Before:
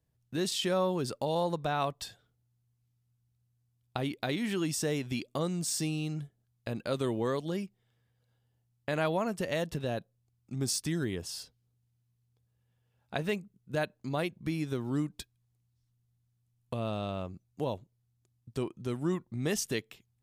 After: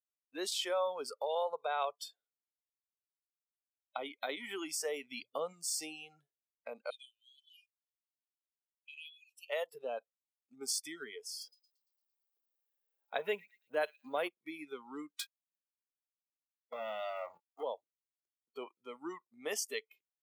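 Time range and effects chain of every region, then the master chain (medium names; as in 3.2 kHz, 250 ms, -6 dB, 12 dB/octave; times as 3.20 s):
5.03–5.53 s: bass shelf 190 Hz +8.5 dB + hum notches 60/120 Hz
6.90–9.50 s: brick-wall FIR high-pass 2.4 kHz + peaking EQ 7.9 kHz -3 dB 2 oct
11.41–14.28 s: companding laws mixed up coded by mu + bass shelf 380 Hz +4.5 dB + feedback echo behind a high-pass 114 ms, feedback 62%, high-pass 2.9 kHz, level -9.5 dB
15.19–17.63 s: compression 10:1, threshold -41 dBFS + waveshaping leveller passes 5 + doubling 23 ms -12.5 dB
whole clip: high-pass 380 Hz 24 dB/octave; spectral noise reduction 22 dB; trim -3 dB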